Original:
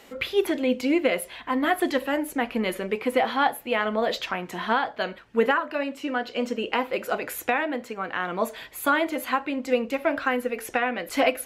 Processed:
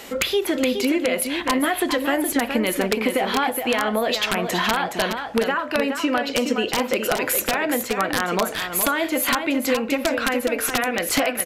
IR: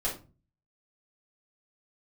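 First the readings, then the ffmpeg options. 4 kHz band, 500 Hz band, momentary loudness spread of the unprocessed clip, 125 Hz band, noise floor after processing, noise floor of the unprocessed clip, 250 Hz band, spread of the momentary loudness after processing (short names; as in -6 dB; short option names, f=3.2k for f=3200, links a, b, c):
+8.5 dB, +3.0 dB, 6 LU, +7.5 dB, -32 dBFS, -47 dBFS, +4.5 dB, 2 LU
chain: -filter_complex "[0:a]highshelf=f=3.8k:g=5.5,asplit=2[a][b];[b]alimiter=limit=-16dB:level=0:latency=1:release=20,volume=-0.5dB[c];[a][c]amix=inputs=2:normalize=0,acompressor=threshold=-22dB:ratio=20,aeval=exprs='(mod(5.62*val(0)+1,2)-1)/5.62':c=same,asplit=2[d][e];[e]aecho=0:1:419:0.447[f];[d][f]amix=inputs=2:normalize=0,aresample=32000,aresample=44100,volume=4.5dB"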